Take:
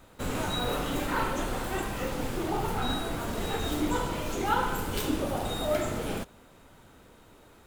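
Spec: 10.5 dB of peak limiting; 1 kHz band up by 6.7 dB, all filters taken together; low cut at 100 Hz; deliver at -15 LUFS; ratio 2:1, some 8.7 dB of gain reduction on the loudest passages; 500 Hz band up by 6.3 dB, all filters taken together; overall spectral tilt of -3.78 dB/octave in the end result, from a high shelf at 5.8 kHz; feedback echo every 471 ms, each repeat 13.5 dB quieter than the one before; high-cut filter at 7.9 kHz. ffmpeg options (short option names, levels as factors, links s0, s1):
-af "highpass=100,lowpass=7900,equalizer=f=500:t=o:g=6,equalizer=f=1000:t=o:g=6.5,highshelf=f=5800:g=-3.5,acompressor=threshold=0.0251:ratio=2,alimiter=level_in=1.58:limit=0.0631:level=0:latency=1,volume=0.631,aecho=1:1:471|942:0.211|0.0444,volume=11.9"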